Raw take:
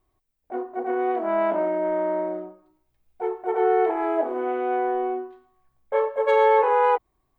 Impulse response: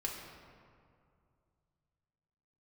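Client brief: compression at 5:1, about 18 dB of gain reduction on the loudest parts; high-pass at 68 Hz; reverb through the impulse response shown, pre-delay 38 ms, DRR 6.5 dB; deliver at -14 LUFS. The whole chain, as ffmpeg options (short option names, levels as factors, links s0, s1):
-filter_complex "[0:a]highpass=68,acompressor=threshold=0.0158:ratio=5,asplit=2[s0][s1];[1:a]atrim=start_sample=2205,adelay=38[s2];[s1][s2]afir=irnorm=-1:irlink=0,volume=0.398[s3];[s0][s3]amix=inputs=2:normalize=0,volume=14.1"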